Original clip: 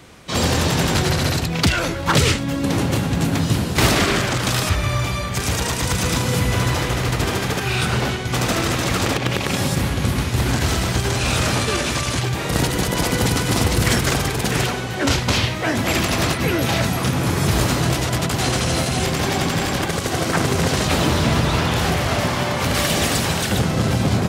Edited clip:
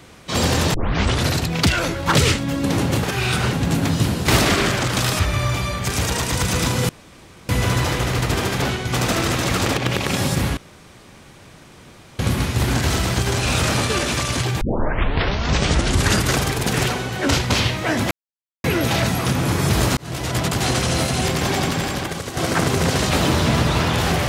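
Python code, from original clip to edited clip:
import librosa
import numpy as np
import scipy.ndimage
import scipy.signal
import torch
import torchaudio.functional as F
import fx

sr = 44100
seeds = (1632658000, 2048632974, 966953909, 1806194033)

y = fx.edit(x, sr, fx.tape_start(start_s=0.74, length_s=0.52),
    fx.insert_room_tone(at_s=6.39, length_s=0.6),
    fx.move(start_s=7.52, length_s=0.5, to_s=3.03),
    fx.insert_room_tone(at_s=9.97, length_s=1.62),
    fx.tape_start(start_s=12.39, length_s=1.76),
    fx.silence(start_s=15.89, length_s=0.53),
    fx.fade_in_span(start_s=17.75, length_s=0.42),
    fx.fade_out_to(start_s=19.35, length_s=0.8, floor_db=-8.0), tone=tone)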